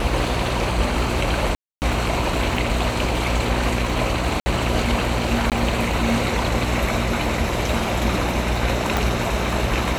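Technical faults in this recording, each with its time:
buzz 60 Hz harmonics 14 -26 dBFS
crackle 22 per s -27 dBFS
1.55–1.82 s: dropout 269 ms
4.40–4.46 s: dropout 60 ms
5.50–5.52 s: dropout 18 ms
8.97 s: pop

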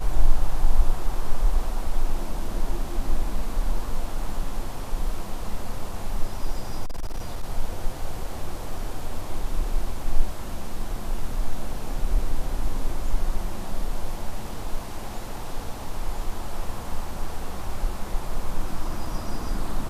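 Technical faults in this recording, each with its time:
6.86–7.44 s: clipped -23 dBFS

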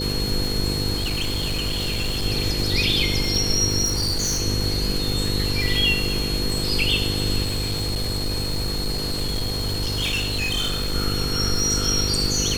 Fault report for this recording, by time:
buzz 50 Hz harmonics 10 -27 dBFS
crackle 120 per s -25 dBFS
whine 4.3 kHz -27 dBFS
0.96–2.26 s: clipped -20.5 dBFS
3.84–4.42 s: clipped -19 dBFS
7.42–10.95 s: clipped -20.5 dBFS

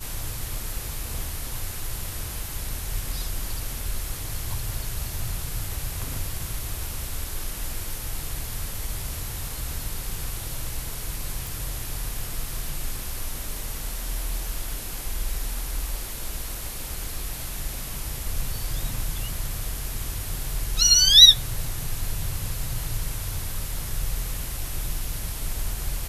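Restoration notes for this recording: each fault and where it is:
11.47 s: pop

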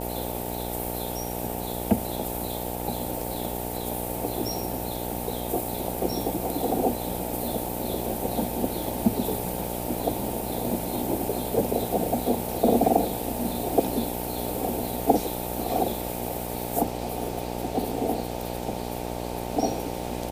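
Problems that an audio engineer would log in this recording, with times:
buzz 60 Hz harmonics 15 -33 dBFS

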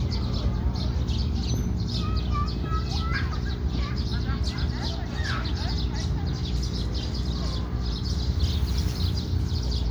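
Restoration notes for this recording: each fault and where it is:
hum 60 Hz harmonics 7 -31 dBFS

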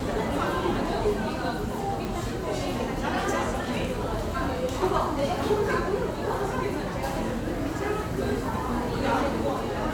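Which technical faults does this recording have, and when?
2.05 s: pop

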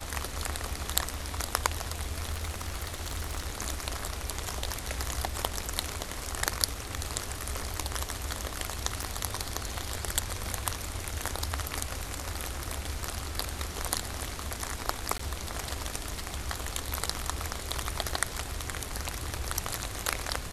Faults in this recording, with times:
2.31–3.44 s: clipped -28 dBFS
9.03 s: pop
15.18–15.19 s: dropout 14 ms

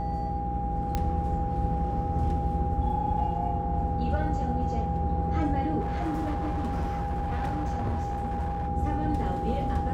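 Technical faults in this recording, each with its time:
hum 60 Hz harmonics 7 -33 dBFS
whine 810 Hz -31 dBFS
0.95 s: pop -14 dBFS
5.80–8.68 s: clipped -25.5 dBFS

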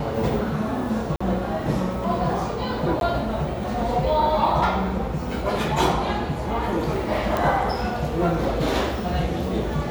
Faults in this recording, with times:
1.16–1.21 s: dropout 45 ms
3.00–3.01 s: dropout
7.37 s: pop -10 dBFS

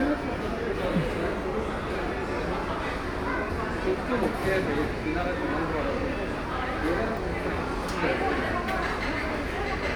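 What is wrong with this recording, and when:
7.17 s: dropout 2.2 ms

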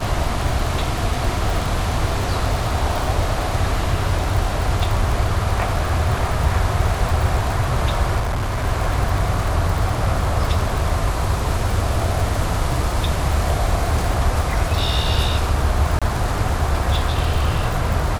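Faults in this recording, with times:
crackle 59 per s -22 dBFS
8.19–8.65 s: clipped -18.5 dBFS
15.99–16.02 s: dropout 26 ms

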